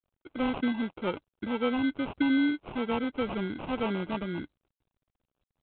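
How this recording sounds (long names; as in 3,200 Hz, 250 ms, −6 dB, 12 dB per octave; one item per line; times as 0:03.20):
aliases and images of a low sample rate 1,800 Hz, jitter 0%
G.726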